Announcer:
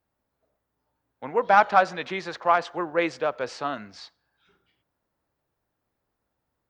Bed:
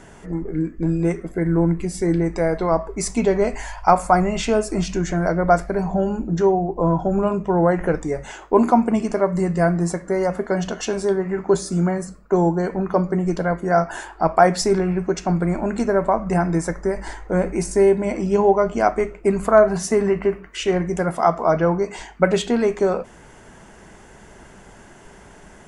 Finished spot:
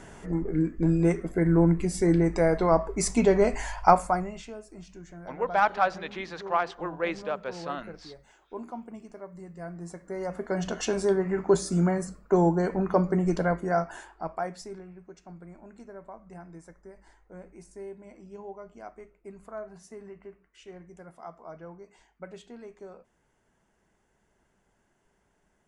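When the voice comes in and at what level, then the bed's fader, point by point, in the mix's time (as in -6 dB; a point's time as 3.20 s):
4.05 s, -5.5 dB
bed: 3.88 s -2.5 dB
4.56 s -23.5 dB
9.53 s -23.5 dB
10.78 s -4 dB
13.47 s -4 dB
14.93 s -26 dB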